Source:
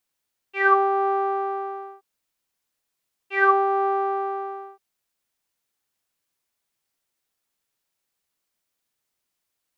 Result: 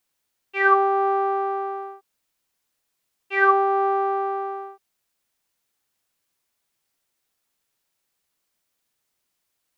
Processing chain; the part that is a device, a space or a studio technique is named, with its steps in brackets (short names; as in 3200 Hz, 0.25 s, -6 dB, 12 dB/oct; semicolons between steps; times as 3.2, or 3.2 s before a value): parallel compression (in parallel at -6.5 dB: compressor, threshold -30 dBFS, peak gain reduction 16 dB)